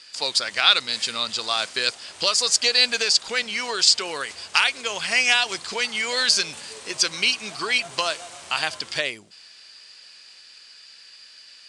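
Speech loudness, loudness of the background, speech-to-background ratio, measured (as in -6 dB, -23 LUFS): -21.0 LUFS, -40.0 LUFS, 19.0 dB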